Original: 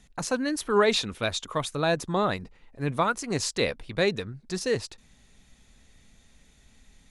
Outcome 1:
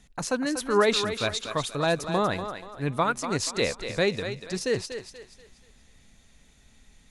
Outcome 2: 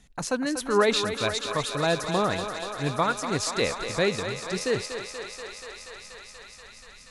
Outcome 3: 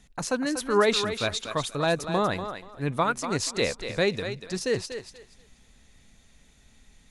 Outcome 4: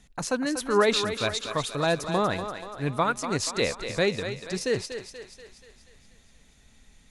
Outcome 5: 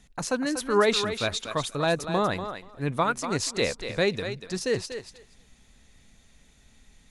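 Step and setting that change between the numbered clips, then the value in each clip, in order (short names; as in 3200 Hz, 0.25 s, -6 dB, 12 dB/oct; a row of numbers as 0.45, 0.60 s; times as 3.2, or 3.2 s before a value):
thinning echo, feedback: 38, 86, 23, 56, 15%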